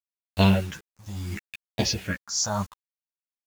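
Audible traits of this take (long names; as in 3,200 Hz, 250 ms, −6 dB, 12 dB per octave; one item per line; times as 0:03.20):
phaser sweep stages 4, 0.71 Hz, lowest notch 380–1,500 Hz
a quantiser's noise floor 8 bits, dither none
tremolo triangle 0.77 Hz, depth 85%
a shimmering, thickened sound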